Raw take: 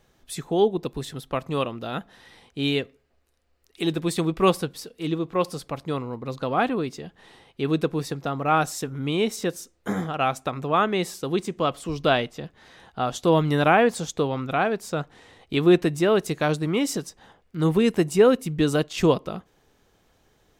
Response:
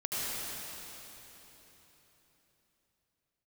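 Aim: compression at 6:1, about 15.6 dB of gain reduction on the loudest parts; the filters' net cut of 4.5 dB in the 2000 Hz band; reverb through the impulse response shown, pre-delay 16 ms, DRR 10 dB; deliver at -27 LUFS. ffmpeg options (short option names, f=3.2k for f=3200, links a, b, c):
-filter_complex "[0:a]equalizer=f=2k:t=o:g=-6.5,acompressor=threshold=-29dB:ratio=6,asplit=2[a][b];[1:a]atrim=start_sample=2205,adelay=16[c];[b][c]afir=irnorm=-1:irlink=0,volume=-17dB[d];[a][d]amix=inputs=2:normalize=0,volume=7dB"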